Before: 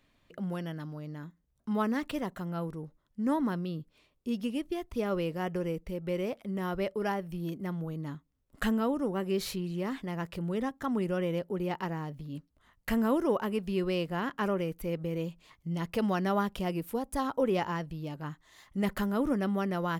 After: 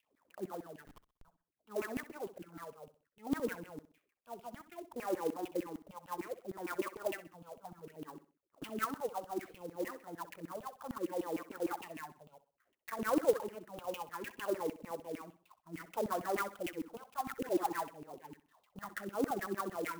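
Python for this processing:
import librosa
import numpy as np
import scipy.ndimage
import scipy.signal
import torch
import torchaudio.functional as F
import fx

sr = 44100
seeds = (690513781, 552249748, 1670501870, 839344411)

y = fx.peak_eq(x, sr, hz=190.0, db=-10.5, octaves=1.0, at=(12.29, 12.99))
y = np.maximum(y, 0.0)
y = fx.dispersion(y, sr, late='highs', ms=91.0, hz=1200.0, at=(17.32, 18.14))
y = fx.filter_lfo_bandpass(y, sr, shape='saw_down', hz=6.6, low_hz=260.0, high_hz=2900.0, q=7.1)
y = fx.phaser_stages(y, sr, stages=4, low_hz=310.0, high_hz=4600.0, hz=0.63, feedback_pct=0)
y = fx.schmitt(y, sr, flips_db=-59.5, at=(0.85, 1.25))
y = fx.echo_feedback(y, sr, ms=64, feedback_pct=36, wet_db=-15.0)
y = fx.clock_jitter(y, sr, seeds[0], jitter_ms=0.034)
y = y * 10.0 ** (12.0 / 20.0)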